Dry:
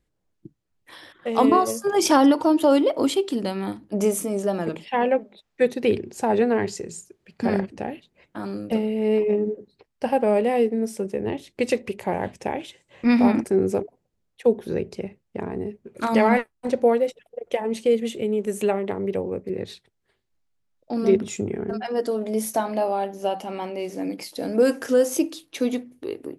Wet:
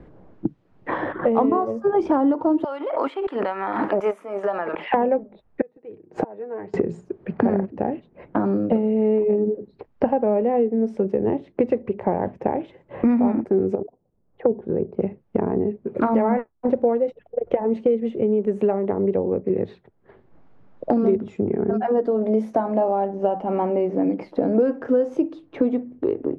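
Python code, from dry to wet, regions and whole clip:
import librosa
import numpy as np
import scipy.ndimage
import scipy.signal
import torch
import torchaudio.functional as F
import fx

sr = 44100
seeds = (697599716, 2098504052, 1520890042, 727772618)

y = fx.chain(x, sr, fx.highpass(hz=1400.0, slope=12),
    fx.peak_eq(hz=11000.0, db=9.5, octaves=0.7),
    fx.pre_swell(db_per_s=44.0), at=(2.64, 4.94))
y = fx.chain(y, sr, fx.gate_flip(shuts_db=-25.0, range_db=-33),
    fx.low_shelf(hz=260.0, db=-10.5),
    fx.comb(ms=6.4, depth=0.54), at=(5.61, 6.74))
y = fx.chain(y, sr, fx.lowpass(hz=1100.0, slope=12),
    fx.level_steps(step_db=10), at=(13.75, 15.02))
y = scipy.signal.sosfilt(scipy.signal.butter(2, 1000.0, 'lowpass', fs=sr, output='sos'), y)
y = fx.band_squash(y, sr, depth_pct=100)
y = y * 10.0 ** (2.5 / 20.0)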